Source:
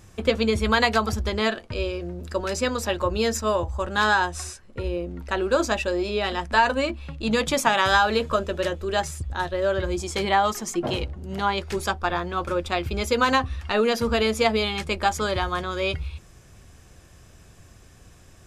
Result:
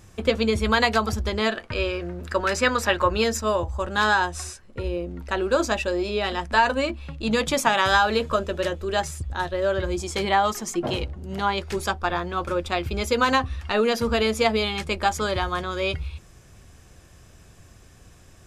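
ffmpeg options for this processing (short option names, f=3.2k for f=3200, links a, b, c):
-filter_complex "[0:a]asettb=1/sr,asplit=3[a][b][c];[a]atrim=end=1.574[d];[b]atrim=start=1.57:end=3.24,asetpts=PTS-STARTPTS,afade=t=in:d=0.004:c=qsin,afade=t=out:st=1.666:d=0.004:c=qsin,equalizer=f=1.6k:w=0.8:g=9.5[e];[c]atrim=start=3.236[f];[d][e]acrossfade=d=0.004:c1=hsin:c2=qsin[g];[g][f]acrossfade=d=0.004:c1=qsin:c2=hsin"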